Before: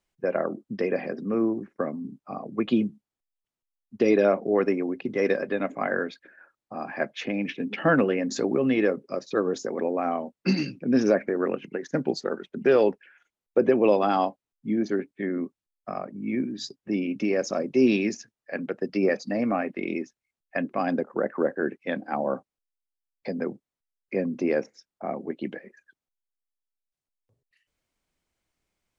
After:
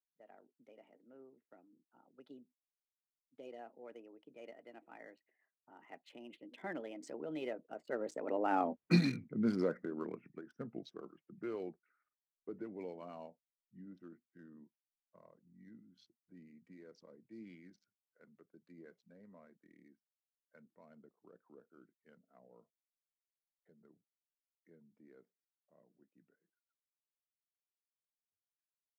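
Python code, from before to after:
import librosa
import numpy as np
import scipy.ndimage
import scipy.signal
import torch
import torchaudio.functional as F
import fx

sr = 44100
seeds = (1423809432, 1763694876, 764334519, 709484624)

y = fx.wiener(x, sr, points=9)
y = fx.doppler_pass(y, sr, speed_mps=53, closest_m=13.0, pass_at_s=8.76)
y = y * 10.0 ** (-2.5 / 20.0)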